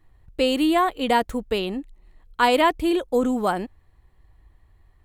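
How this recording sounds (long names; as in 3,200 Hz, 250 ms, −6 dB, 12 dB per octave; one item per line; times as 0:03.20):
background noise floor −58 dBFS
spectral slope −2.0 dB per octave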